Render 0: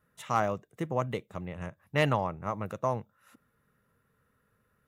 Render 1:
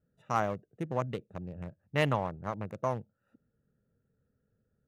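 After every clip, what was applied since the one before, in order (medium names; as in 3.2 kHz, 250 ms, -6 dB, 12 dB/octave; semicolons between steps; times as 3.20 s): local Wiener filter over 41 samples; trim -1.5 dB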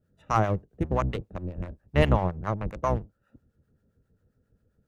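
octave divider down 1 oct, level +1 dB; treble shelf 7.5 kHz -6 dB; harmonic tremolo 7.5 Hz, depth 70%, crossover 760 Hz; trim +8.5 dB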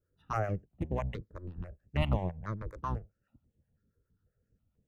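stepped phaser 6.1 Hz 750–4800 Hz; trim -6 dB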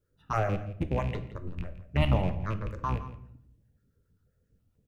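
rattle on loud lows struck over -33 dBFS, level -37 dBFS; delay 168 ms -15.5 dB; simulated room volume 140 m³, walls mixed, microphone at 0.32 m; trim +4 dB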